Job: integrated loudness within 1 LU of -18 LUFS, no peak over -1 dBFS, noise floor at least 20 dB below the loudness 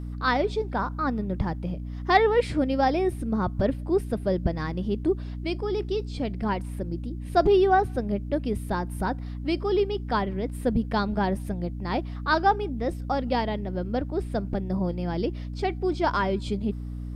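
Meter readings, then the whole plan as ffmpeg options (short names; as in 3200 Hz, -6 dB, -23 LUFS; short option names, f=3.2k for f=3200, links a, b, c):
hum 60 Hz; harmonics up to 300 Hz; hum level -31 dBFS; loudness -27.0 LUFS; peak -6.5 dBFS; loudness target -18.0 LUFS
-> -af "bandreject=f=60:t=h:w=4,bandreject=f=120:t=h:w=4,bandreject=f=180:t=h:w=4,bandreject=f=240:t=h:w=4,bandreject=f=300:t=h:w=4"
-af "volume=9dB,alimiter=limit=-1dB:level=0:latency=1"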